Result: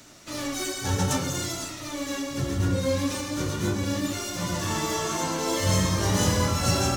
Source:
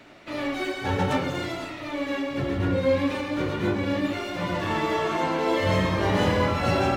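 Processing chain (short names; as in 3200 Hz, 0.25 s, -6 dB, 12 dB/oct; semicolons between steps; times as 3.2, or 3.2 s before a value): EQ curve 120 Hz 0 dB, 410 Hz -7 dB, 770 Hz -8 dB, 1200 Hz -4 dB, 2300 Hz -8 dB, 4300 Hz +3 dB, 6100 Hz +15 dB, 12000 Hz +13 dB; gain +2.5 dB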